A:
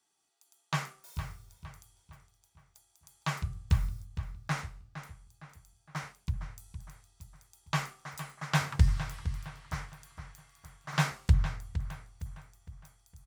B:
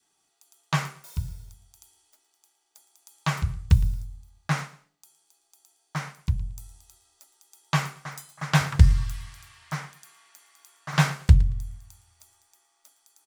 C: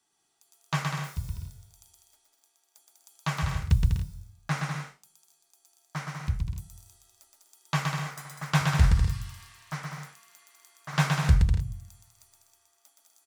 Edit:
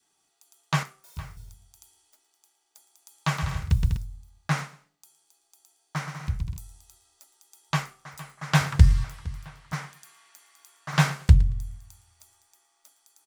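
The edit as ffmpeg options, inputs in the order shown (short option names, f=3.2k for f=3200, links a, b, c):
-filter_complex "[0:a]asplit=3[a][b][c];[2:a]asplit=2[d][e];[1:a]asplit=6[f][g][h][i][j][k];[f]atrim=end=0.832[l];[a]atrim=start=0.828:end=1.372[m];[g]atrim=start=1.368:end=3.372[n];[d]atrim=start=3.368:end=3.972[o];[h]atrim=start=3.968:end=6.072[p];[e]atrim=start=6.068:end=6.572[q];[i]atrim=start=6.568:end=7.85[r];[b]atrim=start=7.69:end=8.54[s];[j]atrim=start=8.38:end=9.042[t];[c]atrim=start=9.038:end=9.732[u];[k]atrim=start=9.728[v];[l][m]acrossfade=d=0.004:c1=hsin:c2=hsin[w];[w][n]acrossfade=d=0.004:c1=hsin:c2=hsin[x];[x][o]acrossfade=d=0.004:c1=hsin:c2=hsin[y];[y][p]acrossfade=d=0.004:c1=hsin:c2=hsin[z];[z][q]acrossfade=d=0.004:c1=hsin:c2=hsin[aa];[aa][r]acrossfade=d=0.004:c1=hsin:c2=hsin[ab];[ab][s]acrossfade=d=0.16:c1=tri:c2=tri[ac];[ac][t]acrossfade=d=0.16:c1=tri:c2=tri[ad];[ad][u]acrossfade=d=0.004:c1=hsin:c2=hsin[ae];[ae][v]acrossfade=d=0.004:c1=hsin:c2=hsin"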